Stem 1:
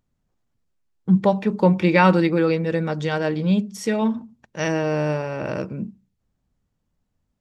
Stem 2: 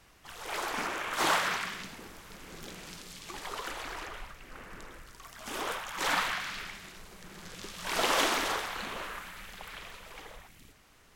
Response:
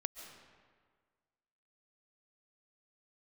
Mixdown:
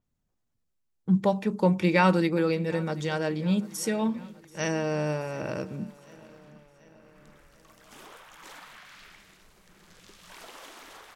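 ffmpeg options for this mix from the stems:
-filter_complex "[0:a]highshelf=f=5800:g=6,volume=0.501,asplit=3[s0][s1][s2];[s1]volume=0.0891[s3];[1:a]acompressor=threshold=0.0141:ratio=4,adelay=2450,volume=0.355,afade=t=in:st=6.99:d=0.42:silence=0.266073[s4];[s2]apad=whole_len=600070[s5];[s4][s5]sidechaincompress=threshold=0.0224:ratio=8:attack=16:release=126[s6];[s3]aecho=0:1:733|1466|2199|2932|3665|4398|5131|5864:1|0.55|0.303|0.166|0.0915|0.0503|0.0277|0.0152[s7];[s0][s6][s7]amix=inputs=3:normalize=0,adynamicequalizer=threshold=0.00224:dfrequency=6600:dqfactor=0.7:tfrequency=6600:tqfactor=0.7:attack=5:release=100:ratio=0.375:range=4:mode=boostabove:tftype=highshelf"

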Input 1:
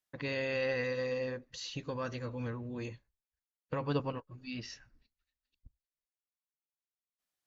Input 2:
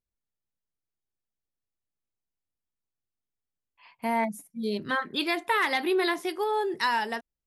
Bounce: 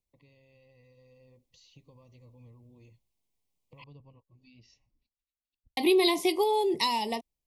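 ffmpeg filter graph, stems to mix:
-filter_complex "[0:a]acrossover=split=130[s0][s1];[s1]acompressor=threshold=0.00398:ratio=5[s2];[s0][s2]amix=inputs=2:normalize=0,volume=0.168[s3];[1:a]acrossover=split=270|3000[s4][s5][s6];[s5]acompressor=threshold=0.0282:ratio=6[s7];[s4][s7][s6]amix=inputs=3:normalize=0,volume=1.26,asplit=3[s8][s9][s10];[s8]atrim=end=3.84,asetpts=PTS-STARTPTS,afade=t=out:st=3.836:d=0.004:c=hsin[s11];[s9]atrim=start=3.84:end=5.77,asetpts=PTS-STARTPTS,volume=0[s12];[s10]atrim=start=5.77,asetpts=PTS-STARTPTS,afade=t=in:d=0.004:c=hsin[s13];[s11][s12][s13]concat=n=3:v=0:a=1[s14];[s3][s14]amix=inputs=2:normalize=0,dynaudnorm=f=450:g=5:m=1.88,asuperstop=centerf=1500:order=8:qfactor=1.7"

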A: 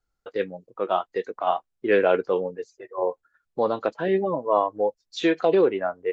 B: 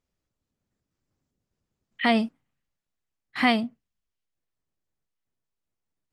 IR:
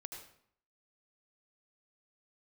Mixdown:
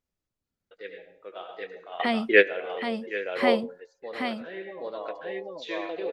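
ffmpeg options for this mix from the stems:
-filter_complex "[0:a]equalizer=f=125:t=o:w=1:g=-11,equalizer=f=250:t=o:w=1:g=-3,equalizer=f=500:t=o:w=1:g=4,equalizer=f=1000:t=o:w=1:g=-7,equalizer=f=2000:t=o:w=1:g=11,equalizer=f=4000:t=o:w=1:g=7,adelay=450,volume=0.944,asplit=3[s0][s1][s2];[s1]volume=0.237[s3];[s2]volume=0.188[s4];[1:a]volume=0.562,asplit=3[s5][s6][s7];[s6]volume=0.562[s8];[s7]apad=whole_len=289856[s9];[s0][s9]sidechaingate=range=0.0224:threshold=0.00282:ratio=16:detection=peak[s10];[2:a]atrim=start_sample=2205[s11];[s3][s11]afir=irnorm=-1:irlink=0[s12];[s4][s8]amix=inputs=2:normalize=0,aecho=0:1:776:1[s13];[s10][s5][s12][s13]amix=inputs=4:normalize=0"

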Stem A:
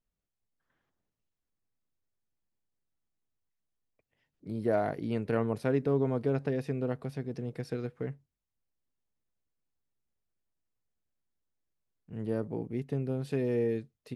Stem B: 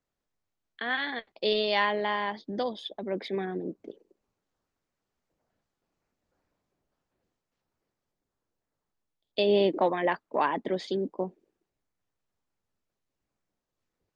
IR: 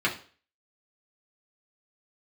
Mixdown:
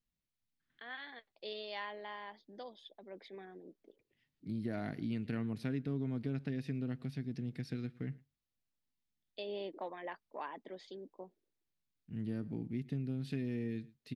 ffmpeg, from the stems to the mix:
-filter_complex "[0:a]equalizer=f=125:t=o:w=1:g=3,equalizer=f=250:t=o:w=1:g=7,equalizer=f=500:t=o:w=1:g=-10,equalizer=f=1000:t=o:w=1:g=-7,equalizer=f=2000:t=o:w=1:g=4,equalizer=f=4000:t=o:w=1:g=7,equalizer=f=8000:t=o:w=1:g=-3,volume=0.562,asplit=3[s0][s1][s2];[s1]volume=0.0668[s3];[1:a]lowshelf=f=210:g=-10,volume=0.447[s4];[s2]apad=whole_len=624141[s5];[s4][s5]sidechaingate=range=0.355:threshold=0.00224:ratio=16:detection=peak[s6];[s3]aecho=0:1:111:1[s7];[s0][s6][s7]amix=inputs=3:normalize=0,acompressor=threshold=0.0178:ratio=2.5"

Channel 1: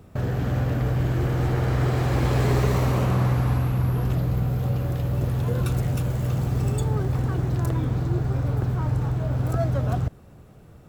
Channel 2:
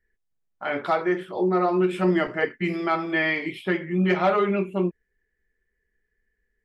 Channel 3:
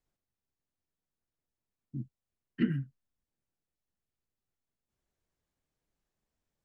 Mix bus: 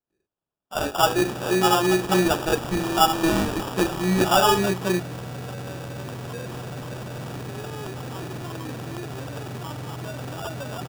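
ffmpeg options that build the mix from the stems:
-filter_complex "[0:a]lowshelf=f=180:g=-11,acontrast=36,adelay=850,volume=0.944[s0];[1:a]adelay=100,volume=1.12[s1];[2:a]volume=0.596[s2];[s0][s2]amix=inputs=2:normalize=0,aeval=exprs='(mod(5.31*val(0)+1,2)-1)/5.31':c=same,alimiter=level_in=1.12:limit=0.0631:level=0:latency=1:release=15,volume=0.891,volume=1[s3];[s1][s3]amix=inputs=2:normalize=0,highpass=130,adynamicequalizer=threshold=0.00708:dfrequency=1300:dqfactor=4.9:tfrequency=1300:tqfactor=4.9:attack=5:release=100:ratio=0.375:range=4:mode=boostabove:tftype=bell,acrusher=samples=21:mix=1:aa=0.000001"

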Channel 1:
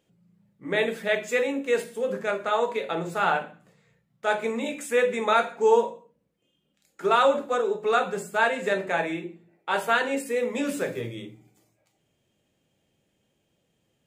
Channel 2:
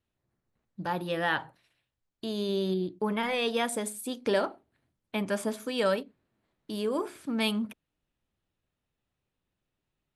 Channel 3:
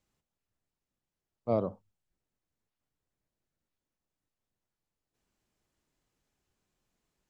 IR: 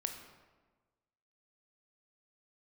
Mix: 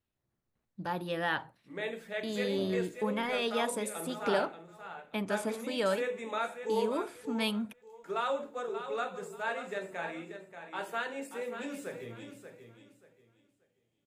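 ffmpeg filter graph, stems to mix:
-filter_complex "[0:a]adelay=1050,volume=0.237,asplit=2[s0][s1];[s1]volume=0.335[s2];[1:a]volume=0.668[s3];[2:a]alimiter=level_in=1.19:limit=0.0631:level=0:latency=1,volume=0.841,adelay=1100,volume=0.335[s4];[s2]aecho=0:1:583|1166|1749|2332:1|0.25|0.0625|0.0156[s5];[s0][s3][s4][s5]amix=inputs=4:normalize=0"

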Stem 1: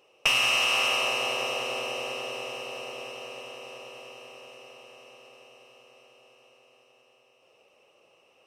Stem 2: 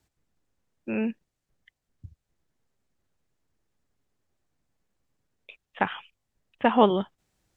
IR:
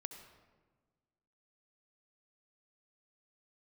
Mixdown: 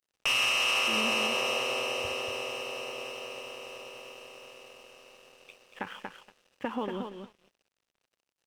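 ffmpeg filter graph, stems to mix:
-filter_complex "[0:a]equalizer=f=730:t=o:w=0.33:g=-4.5,volume=1.12,asplit=2[s0][s1];[s1]volume=0.112[s2];[1:a]equalizer=f=680:t=o:w=0.25:g=-11.5,acompressor=threshold=0.0562:ratio=20,volume=0.596,asplit=3[s3][s4][s5];[s4]volume=0.282[s6];[s5]volume=0.562[s7];[2:a]atrim=start_sample=2205[s8];[s2][s6]amix=inputs=2:normalize=0[s9];[s9][s8]afir=irnorm=-1:irlink=0[s10];[s7]aecho=0:1:235|470|705:1|0.16|0.0256[s11];[s0][s3][s10][s11]amix=inputs=4:normalize=0,equalizer=f=130:w=1.1:g=-2.5,aeval=exprs='sgn(val(0))*max(abs(val(0))-0.00188,0)':c=same,alimiter=limit=0.119:level=0:latency=1:release=60"

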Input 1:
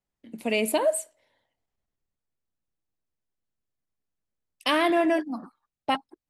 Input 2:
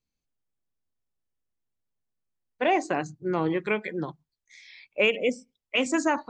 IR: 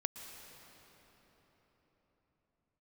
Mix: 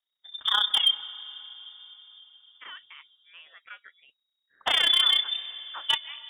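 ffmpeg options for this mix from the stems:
-filter_complex "[0:a]equalizer=f=1200:t=o:w=0.47:g=-10,tremolo=f=31:d=0.788,volume=1.26,asplit=3[s0][s1][s2];[s0]atrim=end=1.47,asetpts=PTS-STARTPTS,afade=t=out:st=1.466:d=0.004:c=hsin[s3];[s1]atrim=start=1.47:end=2.58,asetpts=PTS-STARTPTS,volume=0[s4];[s2]atrim=start=2.58,asetpts=PTS-STARTPTS,afade=t=in:d=0.004:c=hsin[s5];[s3][s4][s5]concat=n=3:v=0:a=1,asplit=2[s6][s7];[s7]volume=0.473[s8];[1:a]highpass=1200,volume=0.224[s9];[2:a]atrim=start_sample=2205[s10];[s8][s10]afir=irnorm=-1:irlink=0[s11];[s6][s9][s11]amix=inputs=3:normalize=0,lowpass=f=3200:t=q:w=0.5098,lowpass=f=3200:t=q:w=0.6013,lowpass=f=3200:t=q:w=0.9,lowpass=f=3200:t=q:w=2.563,afreqshift=-3800,asoftclip=type=hard:threshold=0.2"

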